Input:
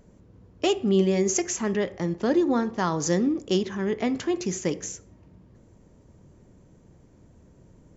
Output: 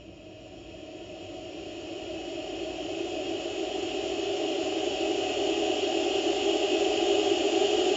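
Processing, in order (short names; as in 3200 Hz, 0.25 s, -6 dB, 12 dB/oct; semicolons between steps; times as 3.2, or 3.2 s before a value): bin magnitudes rounded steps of 15 dB; Paulstretch 41×, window 0.50 s, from 0.45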